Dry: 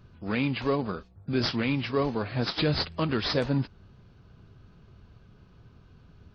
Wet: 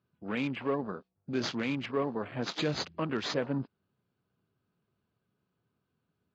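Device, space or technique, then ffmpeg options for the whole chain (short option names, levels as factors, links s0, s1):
over-cleaned archive recording: -af "highpass=170,lowpass=5000,afwtdn=0.01,volume=0.631"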